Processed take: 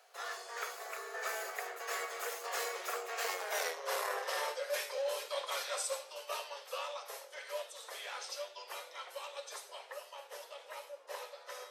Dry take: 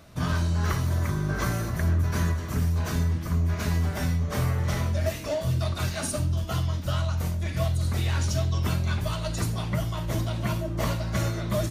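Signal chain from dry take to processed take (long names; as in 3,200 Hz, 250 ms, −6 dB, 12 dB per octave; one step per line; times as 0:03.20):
source passing by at 0:03.65, 40 m/s, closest 9.7 metres
soft clipping −26 dBFS, distortion −13 dB
Butterworth high-pass 430 Hz 72 dB per octave
reversed playback
downward compressor 12 to 1, threshold −49 dBFS, peak gain reduction 16.5 dB
reversed playback
level +16 dB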